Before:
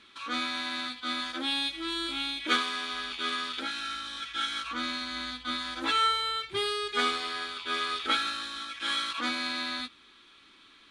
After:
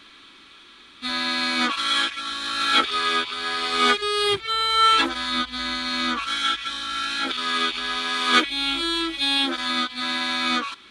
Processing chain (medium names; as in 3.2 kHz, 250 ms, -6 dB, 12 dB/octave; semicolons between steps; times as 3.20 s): reverse the whole clip; trim +8.5 dB